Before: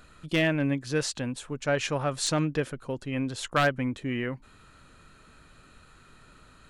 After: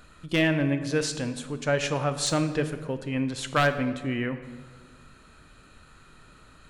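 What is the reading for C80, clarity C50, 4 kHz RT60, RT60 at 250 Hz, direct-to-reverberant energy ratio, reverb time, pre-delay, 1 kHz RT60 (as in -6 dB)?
12.5 dB, 11.0 dB, 0.95 s, 1.9 s, 9.5 dB, 1.4 s, 18 ms, 1.3 s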